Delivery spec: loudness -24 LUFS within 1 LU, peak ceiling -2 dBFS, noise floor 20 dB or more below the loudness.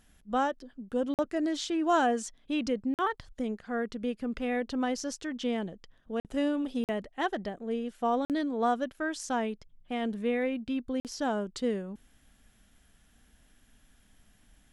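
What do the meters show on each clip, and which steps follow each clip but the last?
dropouts 6; longest dropout 48 ms; loudness -32.0 LUFS; peak -14.5 dBFS; loudness target -24.0 LUFS
-> interpolate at 1.14/2.94/6.2/6.84/8.25/11, 48 ms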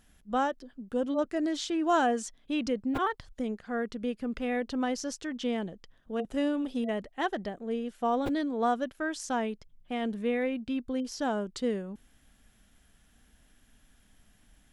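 dropouts 0; loudness -31.5 LUFS; peak -14.5 dBFS; loudness target -24.0 LUFS
-> gain +7.5 dB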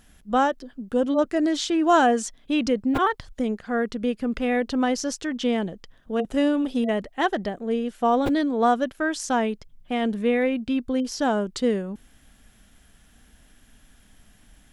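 loudness -24.0 LUFS; peak -7.0 dBFS; noise floor -56 dBFS

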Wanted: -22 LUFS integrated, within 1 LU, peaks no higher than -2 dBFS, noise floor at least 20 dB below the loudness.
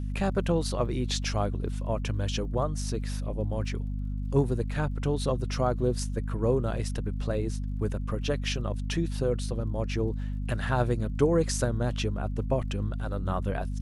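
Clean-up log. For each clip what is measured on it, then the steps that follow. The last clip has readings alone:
ticks 43/s; hum 50 Hz; harmonics up to 250 Hz; hum level -29 dBFS; loudness -30.0 LUFS; peak -10.5 dBFS; loudness target -22.0 LUFS
-> de-click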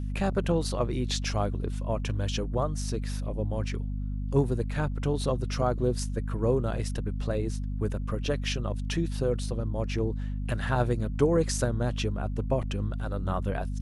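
ticks 0.14/s; hum 50 Hz; harmonics up to 250 Hz; hum level -29 dBFS
-> notches 50/100/150/200/250 Hz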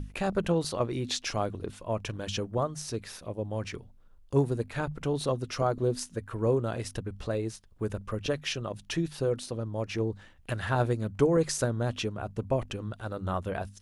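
hum none; loudness -31.5 LUFS; peak -12.0 dBFS; loudness target -22.0 LUFS
-> gain +9.5 dB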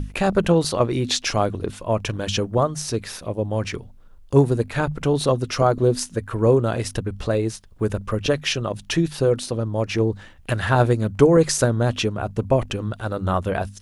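loudness -22.0 LUFS; peak -2.5 dBFS; noise floor -46 dBFS

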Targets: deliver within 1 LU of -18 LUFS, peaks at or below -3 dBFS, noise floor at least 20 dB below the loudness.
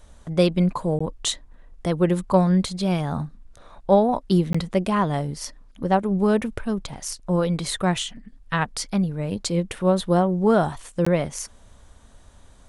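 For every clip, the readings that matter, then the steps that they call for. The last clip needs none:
dropouts 3; longest dropout 15 ms; loudness -23.0 LUFS; peak -5.5 dBFS; loudness target -18.0 LUFS
-> interpolate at 0.99/4.53/11.05, 15 ms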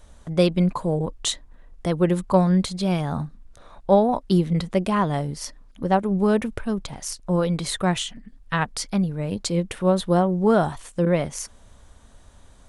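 dropouts 0; loudness -23.0 LUFS; peak -5.5 dBFS; loudness target -18.0 LUFS
-> gain +5 dB; limiter -3 dBFS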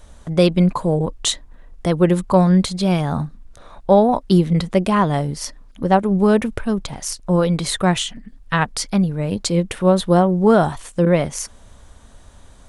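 loudness -18.0 LUFS; peak -3.0 dBFS; noise floor -47 dBFS

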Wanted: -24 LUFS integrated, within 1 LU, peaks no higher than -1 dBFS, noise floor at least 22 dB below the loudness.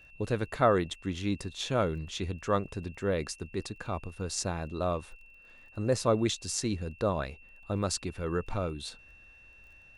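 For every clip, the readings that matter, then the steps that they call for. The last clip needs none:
ticks 21/s; steady tone 2700 Hz; tone level -54 dBFS; loudness -32.0 LUFS; peak -10.5 dBFS; loudness target -24.0 LUFS
-> de-click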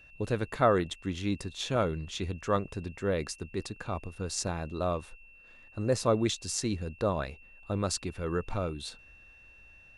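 ticks 0.10/s; steady tone 2700 Hz; tone level -54 dBFS
-> notch 2700 Hz, Q 30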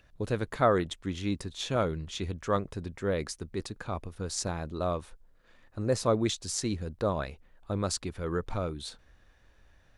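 steady tone none; loudness -32.0 LUFS; peak -10.5 dBFS; loudness target -24.0 LUFS
-> gain +8 dB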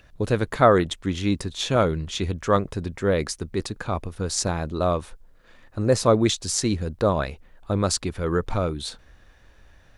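loudness -24.0 LUFS; peak -2.5 dBFS; noise floor -54 dBFS

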